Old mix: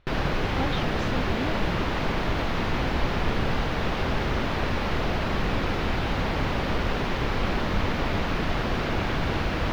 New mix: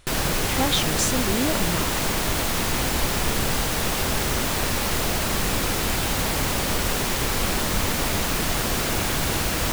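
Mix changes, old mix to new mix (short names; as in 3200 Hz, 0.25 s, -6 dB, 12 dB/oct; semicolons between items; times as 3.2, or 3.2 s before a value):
speech +6.5 dB; master: remove air absorption 290 m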